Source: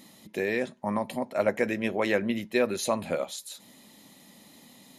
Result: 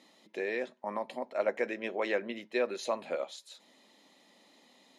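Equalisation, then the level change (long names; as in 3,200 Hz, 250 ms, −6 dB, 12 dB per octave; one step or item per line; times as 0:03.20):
Chebyshev high-pass filter 400 Hz, order 2
low-pass filter 5,400 Hz 12 dB per octave
−4.5 dB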